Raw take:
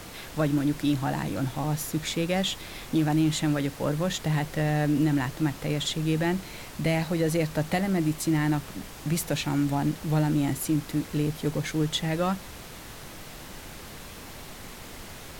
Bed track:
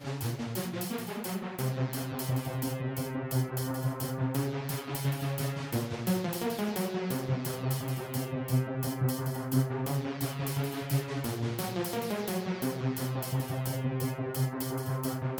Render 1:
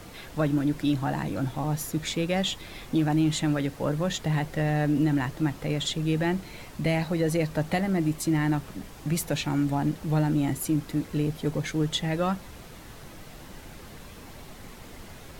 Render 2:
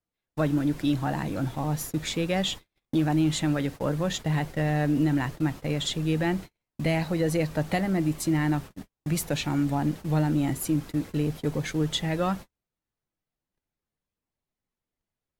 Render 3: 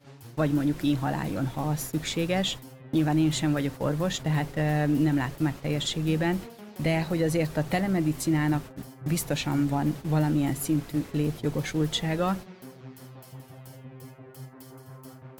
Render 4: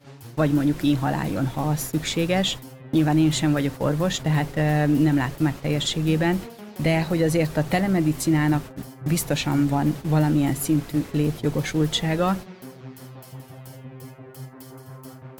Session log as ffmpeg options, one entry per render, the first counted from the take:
-af "afftdn=nr=6:nf=-43"
-af "agate=range=0.00501:threshold=0.0178:ratio=16:detection=peak"
-filter_complex "[1:a]volume=0.224[s0];[0:a][s0]amix=inputs=2:normalize=0"
-af "volume=1.68"

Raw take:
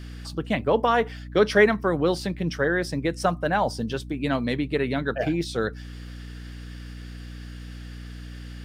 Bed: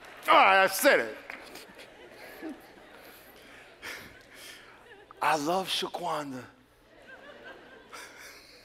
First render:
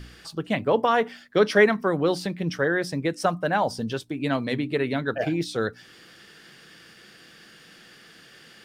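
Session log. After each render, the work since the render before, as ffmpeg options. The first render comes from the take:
-af "bandreject=f=60:t=h:w=4,bandreject=f=120:t=h:w=4,bandreject=f=180:t=h:w=4,bandreject=f=240:t=h:w=4,bandreject=f=300:t=h:w=4"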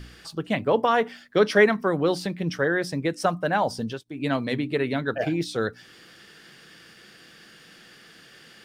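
-filter_complex "[0:a]asplit=3[s0][s1][s2];[s0]atrim=end=4.04,asetpts=PTS-STARTPTS,afade=t=out:st=3.8:d=0.24:c=qsin:silence=0.0794328[s3];[s1]atrim=start=4.04:end=4.05,asetpts=PTS-STARTPTS,volume=0.0794[s4];[s2]atrim=start=4.05,asetpts=PTS-STARTPTS,afade=t=in:d=0.24:c=qsin:silence=0.0794328[s5];[s3][s4][s5]concat=n=3:v=0:a=1"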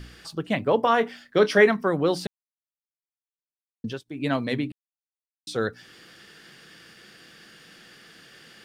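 -filter_complex "[0:a]asettb=1/sr,asplit=3[s0][s1][s2];[s0]atrim=end=0.814[s3];[s1]atrim=start=0.81:end=1.71,asetpts=PTS-STARTPTS,afade=t=in:d=0.004:c=qsin,afade=t=out:st=0.896:d=0.004:c=qsin,asplit=2[s4][s5];[s5]adelay=26,volume=0.251[s6];[s4][s6]amix=inputs=2:normalize=0,atrim=end_sample=39690[s7];[s2]atrim=start=1.706[s8];[s3][s7]acrossfade=d=0.004:c1=hsin:c2=qsin[s9];[s9][s8]acrossfade=d=0.004:c1=qsin:c2=hsin,asplit=5[s10][s11][s12][s13][s14];[s10]atrim=end=2.27,asetpts=PTS-STARTPTS,afade=t=out:st=2.266:d=0.004:c=hsin[s15];[s11]atrim=start=2.27:end=3.84,asetpts=PTS-STARTPTS,volume=0[s16];[s12]atrim=start=3.84:end=4.72,asetpts=PTS-STARTPTS,afade=t=in:d=0.004:c=hsin,afade=t=out:st=0.876:d=0.004:c=hsin[s17];[s13]atrim=start=4.72:end=5.47,asetpts=PTS-STARTPTS,volume=0[s18];[s14]atrim=start=5.47,asetpts=PTS-STARTPTS,afade=t=in:d=0.004:c=hsin[s19];[s15][s16][s17][s18][s19]concat=n=5:v=0:a=1"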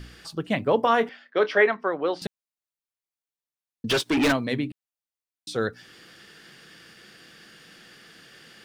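-filter_complex "[0:a]asettb=1/sr,asplit=3[s0][s1][s2];[s0]atrim=end=1.094[s3];[s1]atrim=start=1.09:end=2.22,asetpts=PTS-STARTPTS,afade=t=in:d=0.004:c=qsin,afade=t=out:st=1.126:d=0.004:c=qsin,highpass=430,lowpass=3000[s4];[s2]atrim=start=2.216[s5];[s3][s4]acrossfade=d=0.004:c1=hsin:c2=qsin[s6];[s6][s5]acrossfade=d=0.004:c1=qsin:c2=hsin,asplit=3[s7][s8][s9];[s7]afade=t=out:st=3.89:d=0.02[s10];[s8]asplit=2[s11][s12];[s12]highpass=f=720:p=1,volume=56.2,asoftclip=type=tanh:threshold=0.211[s13];[s11][s13]amix=inputs=2:normalize=0,lowpass=f=5200:p=1,volume=0.501,afade=t=in:st=3.89:d=0.02,afade=t=out:st=4.31:d=0.02[s14];[s9]afade=t=in:st=4.31:d=0.02[s15];[s10][s14][s15]amix=inputs=3:normalize=0"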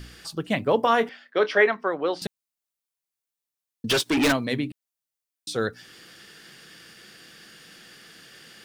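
-af "highshelf=f=5100:g=6.5"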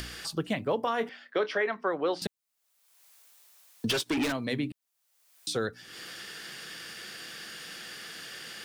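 -filter_complex "[0:a]acrossover=split=450[s0][s1];[s1]acompressor=mode=upward:threshold=0.0178:ratio=2.5[s2];[s0][s2]amix=inputs=2:normalize=0,alimiter=limit=0.112:level=0:latency=1:release=307"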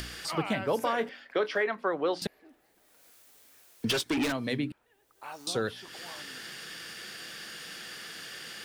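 -filter_complex "[1:a]volume=0.141[s0];[0:a][s0]amix=inputs=2:normalize=0"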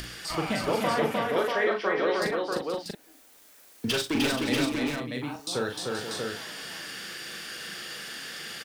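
-filter_complex "[0:a]asplit=2[s0][s1];[s1]adelay=40,volume=0.531[s2];[s0][s2]amix=inputs=2:normalize=0,aecho=1:1:65|304|478|639:0.133|0.708|0.335|0.631"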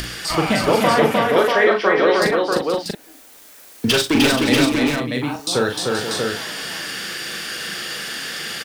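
-af "volume=3.35"

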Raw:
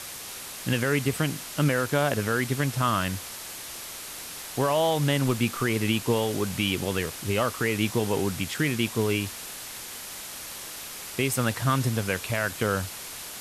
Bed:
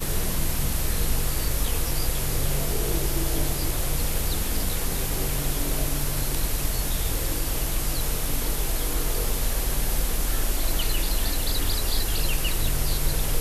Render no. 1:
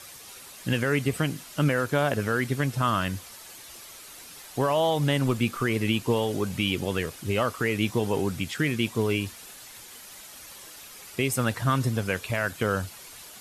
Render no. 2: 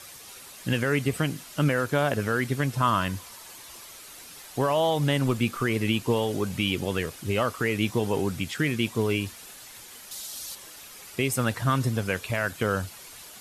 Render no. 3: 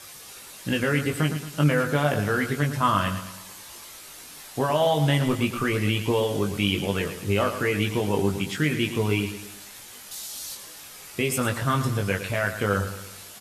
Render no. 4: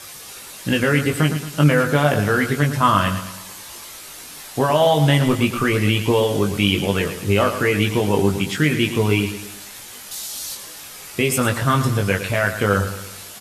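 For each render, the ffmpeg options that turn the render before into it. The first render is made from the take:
-af "afftdn=nr=9:nf=-39"
-filter_complex "[0:a]asettb=1/sr,asplit=3[s0][s1][s2];[s0]atrim=end=2.744[s3];[s1]atrim=start=2.74:end=3.86,asetpts=PTS-STARTPTS,afade=t=in:d=0.004:c=qsin,afade=t=out:st=1.116:d=0.004:c=qsin,equalizer=f=1000:t=o:w=0.23:g=7.5[s4];[s2]atrim=start=3.856[s5];[s3][s4]acrossfade=d=0.004:c1=hsin:c2=qsin[s6];[s6][s5]acrossfade=d=0.004:c1=qsin:c2=hsin,asettb=1/sr,asplit=3[s7][s8][s9];[s7]atrim=end=10.114[s10];[s8]atrim=start=10.11:end=10.55,asetpts=PTS-STARTPTS,afade=t=in:d=0.004:c=qsin,afade=t=out:st=0.436:d=0.004:c=qsin,highshelf=f=3000:t=q:w=1.5:g=7.5[s11];[s9]atrim=start=10.546[s12];[s10][s11]acrossfade=d=0.004:c1=hsin:c2=qsin[s13];[s13][s12]acrossfade=d=0.004:c1=qsin:c2=hsin"
-filter_complex "[0:a]asplit=2[s0][s1];[s1]adelay=20,volume=0.596[s2];[s0][s2]amix=inputs=2:normalize=0,aecho=1:1:112|224|336|448|560:0.299|0.134|0.0605|0.0272|0.0122"
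-af "volume=2"

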